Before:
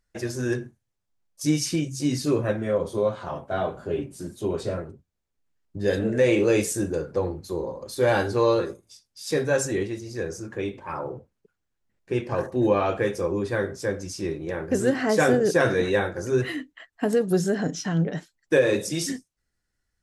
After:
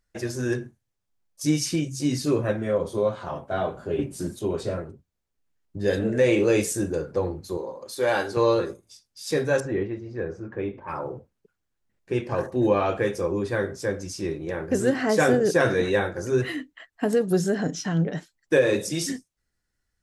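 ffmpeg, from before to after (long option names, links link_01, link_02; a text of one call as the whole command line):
ffmpeg -i in.wav -filter_complex "[0:a]asettb=1/sr,asplit=3[link_01][link_02][link_03];[link_01]atrim=end=7.574[link_04];[link_02]atrim=start=7.57:end=8.37,asetpts=PTS-STARTPTS,afade=type=in:duration=0.004:curve=qsin,afade=type=out:start_time=0.796:duration=0.004:curve=qsin,highpass=frequency=430:poles=1[link_05];[link_03]atrim=start=8.366[link_06];[link_04][link_05]acrossfade=duration=0.004:curve1=hsin:curve2=qsin[link_07];[link_07][link_06]acrossfade=duration=0.004:curve1=qsin:curve2=hsin,asettb=1/sr,asplit=3[link_08][link_09][link_10];[link_08]atrim=end=9.604[link_11];[link_09]atrim=start=9.6:end=10.88,asetpts=PTS-STARTPTS,afade=type=in:duration=0.004:curve=qsin,afade=type=out:start_time=1.276:duration=0.004:curve=qsin,lowpass=1900[link_12];[link_10]atrim=start=10.876[link_13];[link_11][link_12]acrossfade=duration=0.004:curve1=hsin:curve2=qsin[link_14];[link_14][link_13]acrossfade=duration=0.004:curve1=qsin:curve2=hsin,asplit=3[link_15][link_16][link_17];[link_15]atrim=end=3.992[link_18];[link_16]atrim=start=3.988:end=4.392,asetpts=PTS-STARTPTS,volume=5dB[link_19];[link_17]atrim=start=4.388[link_20];[link_18][link_19]acrossfade=duration=0.004:curve1=hsin:curve2=hsin[link_21];[link_21][link_20]acrossfade=duration=0.004:curve1=hsin:curve2=hsin" out.wav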